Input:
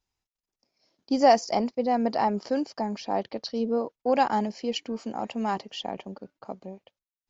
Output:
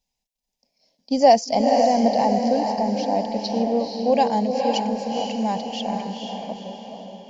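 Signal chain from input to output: static phaser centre 350 Hz, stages 6; on a send: echo that smears into a reverb 477 ms, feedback 46%, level -3.5 dB; on the sum: trim +5.5 dB

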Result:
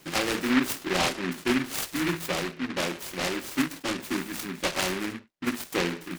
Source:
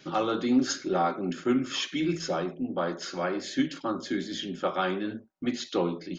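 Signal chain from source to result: delay time shaken by noise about 1.7 kHz, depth 0.26 ms

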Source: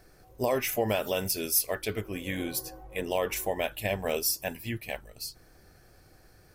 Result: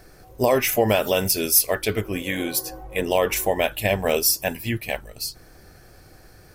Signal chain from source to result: 2.22–2.69 s: bass shelf 150 Hz -10 dB; trim +8.5 dB

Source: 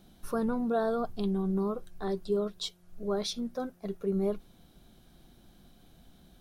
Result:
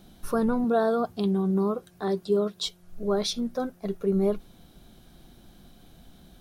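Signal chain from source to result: 0.64–2.67 s: high-pass 110 Hz 12 dB/octave; trim +5.5 dB

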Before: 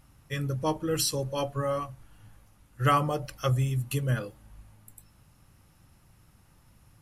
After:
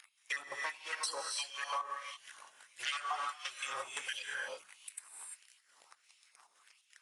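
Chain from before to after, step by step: random holes in the spectrogram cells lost 39%; trance gate "x.xxx.xxx." 174 bpm -60 dB; waveshaping leveller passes 3; gated-style reverb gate 370 ms rising, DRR 4.5 dB; LFO high-pass sine 1.5 Hz 890–2700 Hz; hum notches 50/100/150/200 Hz; dynamic bell 140 Hz, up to -5 dB, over -60 dBFS, Q 2.1; 1.39–2.86 s: band-stop 1.3 kHz, Q 7.7; tone controls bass -7 dB, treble +3 dB; compression 4:1, threshold -43 dBFS, peak gain reduction 21.5 dB; trim +4 dB; AAC 48 kbps 22.05 kHz

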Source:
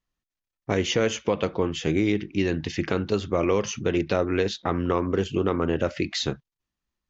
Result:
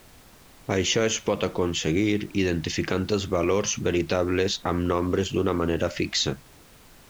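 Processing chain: treble shelf 5.7 kHz +11 dB; in parallel at -1.5 dB: peak limiter -20.5 dBFS, peak gain reduction 11.5 dB; on the sum: added noise pink -48 dBFS; trim -3 dB

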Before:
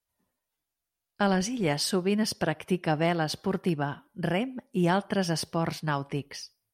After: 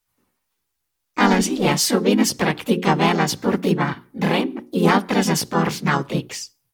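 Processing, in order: hum notches 60/120/180/240/300/360 Hz; harmony voices +3 st -3 dB, +4 st -6 dB, +7 st -5 dB; peaking EQ 640 Hz -8.5 dB 0.27 oct; trim +6.5 dB

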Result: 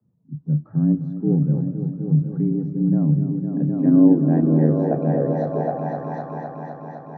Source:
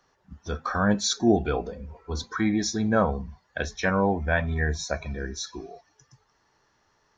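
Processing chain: multi-head delay 255 ms, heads all three, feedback 59%, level -12.5 dB; frequency shift +75 Hz; low-pass sweep 170 Hz -> 870 Hz, 3.16–6.15 s; trim +6.5 dB

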